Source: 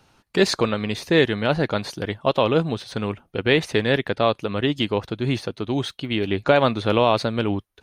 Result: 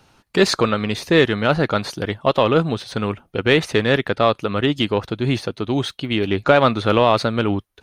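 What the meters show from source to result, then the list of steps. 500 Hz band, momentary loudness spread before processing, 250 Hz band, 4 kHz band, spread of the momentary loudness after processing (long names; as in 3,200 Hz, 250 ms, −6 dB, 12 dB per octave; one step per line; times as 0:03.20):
+3.0 dB, 8 LU, +3.0 dB, +2.5 dB, 8 LU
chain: in parallel at −6.5 dB: soft clipping −12.5 dBFS, distortion −14 dB
on the sum: dynamic equaliser 1,300 Hz, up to +6 dB, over −40 dBFS, Q 4.8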